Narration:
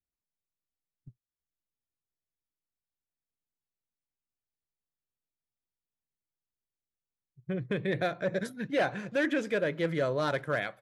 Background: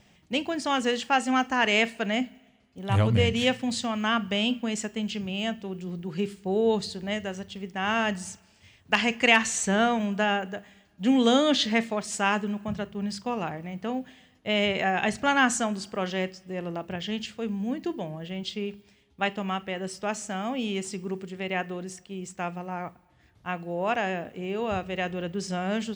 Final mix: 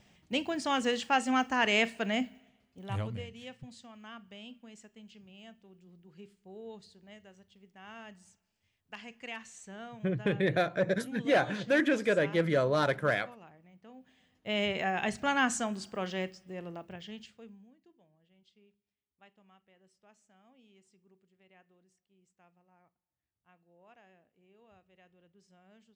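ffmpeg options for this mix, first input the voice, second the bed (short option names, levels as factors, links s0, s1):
-filter_complex "[0:a]adelay=2550,volume=1.26[s0];[1:a]volume=4.22,afade=t=out:st=2.36:d=0.91:silence=0.11885,afade=t=in:st=13.96:d=0.63:silence=0.149624,afade=t=out:st=16.19:d=1.52:silence=0.0446684[s1];[s0][s1]amix=inputs=2:normalize=0"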